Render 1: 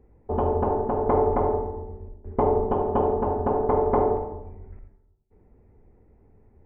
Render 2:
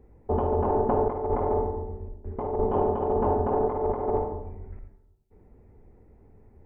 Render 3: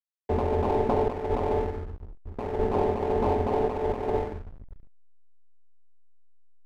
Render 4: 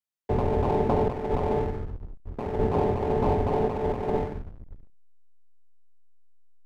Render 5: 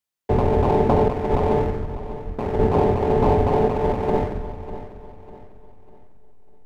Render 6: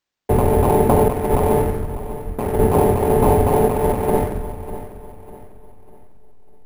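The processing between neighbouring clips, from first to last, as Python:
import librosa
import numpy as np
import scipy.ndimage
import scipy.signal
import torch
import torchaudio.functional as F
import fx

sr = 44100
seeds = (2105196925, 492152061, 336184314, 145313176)

y1 = fx.over_compress(x, sr, threshold_db=-24.0, ratio=-0.5)
y2 = fx.backlash(y1, sr, play_db=-29.5)
y3 = fx.octave_divider(y2, sr, octaves=1, level_db=-1.0)
y4 = fx.echo_feedback(y3, sr, ms=598, feedback_pct=38, wet_db=-14.0)
y4 = y4 * 10.0 ** (6.0 / 20.0)
y5 = np.repeat(y4[::4], 4)[:len(y4)]
y5 = y5 * 10.0 ** (3.0 / 20.0)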